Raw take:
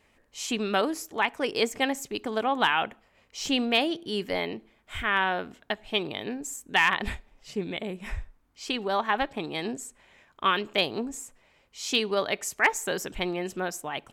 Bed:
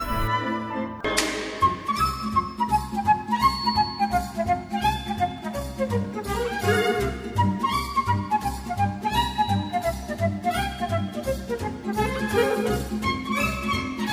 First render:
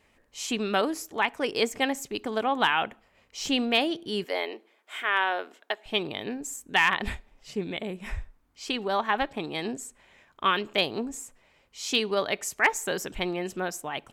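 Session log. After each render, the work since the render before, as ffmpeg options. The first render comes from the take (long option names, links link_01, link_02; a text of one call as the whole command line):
ffmpeg -i in.wav -filter_complex "[0:a]asettb=1/sr,asplit=3[link_01][link_02][link_03];[link_01]atrim=end=4.244[link_04];[link_02]atrim=start=4.24:end=5.86,asetpts=PTS-STARTPTS,afade=type=in:duration=0.004:curve=qsin,afade=type=out:start_time=1.616:duration=0.004:curve=qsin,highpass=frequency=350:width=0.5412,highpass=frequency=350:width=1.3066[link_05];[link_03]atrim=start=5.856[link_06];[link_04][link_05]acrossfade=duration=0.004:curve1=hsin:curve2=qsin[link_07];[link_07][link_06]acrossfade=duration=0.004:curve1=qsin:curve2=hsin" out.wav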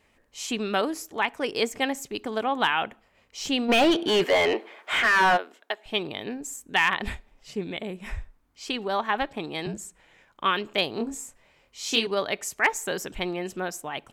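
ffmpeg -i in.wav -filter_complex "[0:a]asplit=3[link_01][link_02][link_03];[link_01]afade=type=out:start_time=3.68:duration=0.02[link_04];[link_02]asplit=2[link_05][link_06];[link_06]highpass=frequency=720:poles=1,volume=28dB,asoftclip=type=tanh:threshold=-10.5dB[link_07];[link_05][link_07]amix=inputs=2:normalize=0,lowpass=frequency=1800:poles=1,volume=-6dB,afade=type=in:start_time=3.68:duration=0.02,afade=type=out:start_time=5.36:duration=0.02[link_08];[link_03]afade=type=in:start_time=5.36:duration=0.02[link_09];[link_04][link_08][link_09]amix=inputs=3:normalize=0,asettb=1/sr,asplit=3[link_10][link_11][link_12];[link_10]atrim=end=9.664[link_13];[link_11]atrim=start=9.66:end=10.44,asetpts=PTS-STARTPTS,afade=type=in:duration=0.004:curve=qsin,afade=type=out:start_time=0.776:duration=0.004:curve=qsin,afreqshift=-62[link_14];[link_12]atrim=start=10.436[link_15];[link_13][link_14]acrossfade=duration=0.004:curve1=hsin:curve2=qsin[link_16];[link_16][link_15]acrossfade=duration=0.004:curve1=qsin:curve2=hsin,asettb=1/sr,asplit=3[link_17][link_18][link_19];[link_17]atrim=end=10.974[link_20];[link_18]atrim=start=10.97:end=12.07,asetpts=PTS-STARTPTS,afade=type=in:duration=0.004:curve=qsin,afade=type=out:start_time=1.096:duration=0.004:curve=qsin,asplit=2[link_21][link_22];[link_22]adelay=26,volume=-3.5dB[link_23];[link_21][link_23]amix=inputs=2:normalize=0,atrim=end_sample=48510[link_24];[link_19]atrim=start=12.066[link_25];[link_20][link_24]acrossfade=duration=0.004:curve1=hsin:curve2=qsin[link_26];[link_26][link_25]acrossfade=duration=0.004:curve1=qsin:curve2=hsin" out.wav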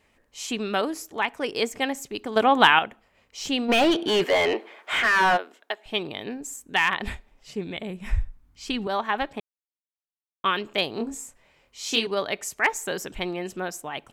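ffmpeg -i in.wav -filter_complex "[0:a]asettb=1/sr,asplit=3[link_01][link_02][link_03];[link_01]atrim=end=7.544[link_04];[link_02]atrim=start=7.54:end=8.87,asetpts=PTS-STARTPTS,afade=type=in:duration=0.004:curve=qsin,afade=type=out:start_time=1.326:duration=0.004:curve=qsin,asubboost=boost=11.5:cutoff=200[link_05];[link_03]atrim=start=8.866[link_06];[link_04][link_05]acrossfade=duration=0.004:curve1=hsin:curve2=qsin[link_07];[link_07][link_06]acrossfade=duration=0.004:curve1=qsin:curve2=hsin,asplit=5[link_08][link_09][link_10][link_11][link_12];[link_08]atrim=end=2.362[link_13];[link_09]atrim=start=2.358:end=2.792,asetpts=PTS-STARTPTS,volume=7.5dB[link_14];[link_10]atrim=start=2.788:end=9.4,asetpts=PTS-STARTPTS,afade=type=out:start_time=6.608:duration=0.004:curve=hsin[link_15];[link_11]atrim=start=9.4:end=10.44,asetpts=PTS-STARTPTS,volume=0[link_16];[link_12]atrim=start=10.44,asetpts=PTS-STARTPTS,afade=type=in:duration=0.004:curve=hsin[link_17];[link_13][link_14]acrossfade=duration=0.004:curve1=hsin:curve2=hsin[link_18];[link_15][link_16][link_17]concat=n=3:v=0:a=1[link_19];[link_18][link_19]acrossfade=duration=0.004:curve1=hsin:curve2=hsin" out.wav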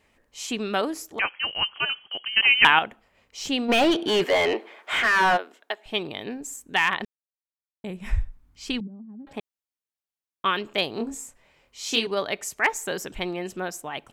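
ffmpeg -i in.wav -filter_complex "[0:a]asettb=1/sr,asplit=3[link_01][link_02][link_03];[link_01]atrim=end=1.194[link_04];[link_02]atrim=start=1.19:end=2.65,asetpts=PTS-STARTPTS,afade=type=in:duration=0.004:curve=qsin,afade=type=out:start_time=1.456:duration=0.004:curve=qsin,lowpass=frequency=2800:width_type=q:width=0.5098,lowpass=frequency=2800:width_type=q:width=0.6013,lowpass=frequency=2800:width_type=q:width=0.9,lowpass=frequency=2800:width_type=q:width=2.563,afreqshift=-3300[link_05];[link_03]atrim=start=2.646[link_06];[link_04][link_05]acrossfade=duration=0.004:curve1=hsin:curve2=qsin[link_07];[link_07][link_06]acrossfade=duration=0.004:curve1=qsin:curve2=hsin,asettb=1/sr,asplit=3[link_08][link_09][link_10];[link_08]atrim=end=8.804[link_11];[link_09]atrim=start=8.8:end=9.27,asetpts=PTS-STARTPTS,afade=type=in:duration=0.004:curve=qsin,afade=type=out:start_time=0.466:duration=0.004:curve=qsin,asuperpass=centerf=210:order=4:qfactor=2.6[link_12];[link_10]atrim=start=9.266[link_13];[link_11][link_12]acrossfade=duration=0.004:curve1=hsin:curve2=qsin[link_14];[link_14][link_13]acrossfade=duration=0.004:curve1=qsin:curve2=hsin,asplit=3[link_15][link_16][link_17];[link_15]atrim=end=7.05,asetpts=PTS-STARTPTS,afade=type=out:start_time=7.046:duration=0.004:curve=hsin[link_18];[link_16]atrim=start=7.05:end=7.84,asetpts=PTS-STARTPTS,volume=0[link_19];[link_17]atrim=start=7.84,asetpts=PTS-STARTPTS,afade=type=in:duration=0.004:curve=hsin[link_20];[link_18][link_19][link_20]concat=n=3:v=0:a=1" out.wav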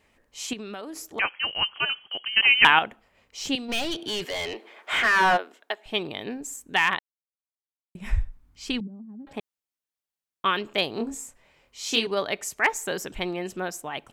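ffmpeg -i in.wav -filter_complex "[0:a]asettb=1/sr,asplit=3[link_01][link_02][link_03];[link_01]atrim=end=0.534[link_04];[link_02]atrim=start=0.53:end=1.07,asetpts=PTS-STARTPTS,afade=type=in:duration=0.004:curve=qsin,afade=type=out:start_time=0.536:duration=0.004:curve=qsin,acompressor=threshold=-33dB:ratio=8:attack=3.2:release=140:knee=1:detection=peak[link_05];[link_03]atrim=start=1.066[link_06];[link_04][link_05]acrossfade=duration=0.004:curve1=hsin:curve2=qsin[link_07];[link_07][link_06]acrossfade=duration=0.004:curve1=qsin:curve2=hsin,asettb=1/sr,asplit=3[link_08][link_09][link_10];[link_08]atrim=end=3.554[link_11];[link_09]atrim=start=3.55:end=4.76,asetpts=PTS-STARTPTS,afade=type=in:duration=0.004:curve=qsin,afade=type=out:start_time=1.206:duration=0.004:curve=qsin,acrossover=split=140|3000[link_12][link_13][link_14];[link_13]acompressor=threshold=-53dB:ratio=1.5:attack=3.2:release=140:knee=2.83:detection=peak[link_15];[link_12][link_15][link_14]amix=inputs=3:normalize=0[link_16];[link_10]atrim=start=4.756[link_17];[link_11][link_16]acrossfade=duration=0.004:curve1=hsin:curve2=qsin[link_18];[link_18][link_17]acrossfade=duration=0.004:curve1=qsin:curve2=hsin,asplit=3[link_19][link_20][link_21];[link_19]atrim=end=6.99,asetpts=PTS-STARTPTS,afade=type=out:start_time=6.986:duration=0.004:curve=hsin[link_22];[link_20]atrim=start=6.99:end=7.95,asetpts=PTS-STARTPTS,volume=0[link_23];[link_21]atrim=start=7.95,asetpts=PTS-STARTPTS,afade=type=in:duration=0.004:curve=hsin[link_24];[link_22][link_23][link_24]concat=n=3:v=0:a=1" out.wav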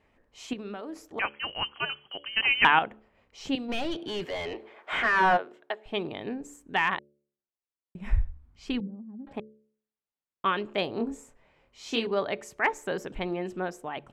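ffmpeg -i in.wav -af "lowpass=frequency=1400:poles=1,bandreject=frequency=72.01:width_type=h:width=4,bandreject=frequency=144.02:width_type=h:width=4,bandreject=frequency=216.03:width_type=h:width=4,bandreject=frequency=288.04:width_type=h:width=4,bandreject=frequency=360.05:width_type=h:width=4,bandreject=frequency=432.06:width_type=h:width=4,bandreject=frequency=504.07:width_type=h:width=4,bandreject=frequency=576.08:width_type=h:width=4" out.wav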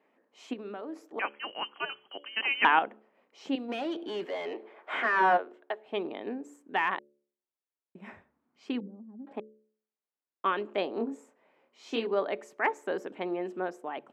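ffmpeg -i in.wav -af "highpass=frequency=240:width=0.5412,highpass=frequency=240:width=1.3066,highshelf=frequency=2800:gain=-12" out.wav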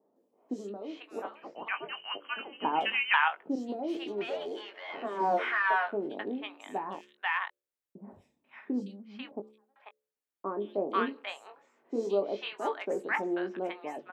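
ffmpeg -i in.wav -filter_complex "[0:a]asplit=2[link_01][link_02];[link_02]adelay=20,volume=-9dB[link_03];[link_01][link_03]amix=inputs=2:normalize=0,acrossover=split=880|4600[link_04][link_05][link_06];[link_06]adelay=160[link_07];[link_05]adelay=490[link_08];[link_04][link_08][link_07]amix=inputs=3:normalize=0" out.wav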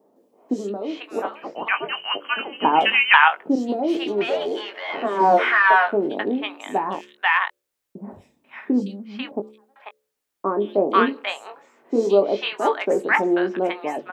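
ffmpeg -i in.wav -af "volume=12dB,alimiter=limit=-1dB:level=0:latency=1" out.wav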